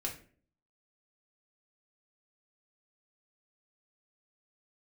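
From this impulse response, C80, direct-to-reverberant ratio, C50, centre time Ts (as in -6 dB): 14.5 dB, -1.5 dB, 9.5 dB, 19 ms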